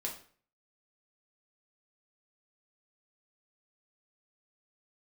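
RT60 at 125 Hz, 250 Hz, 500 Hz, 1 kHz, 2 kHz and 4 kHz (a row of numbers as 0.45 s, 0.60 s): 0.55 s, 0.50 s, 0.50 s, 0.45 s, 0.45 s, 0.40 s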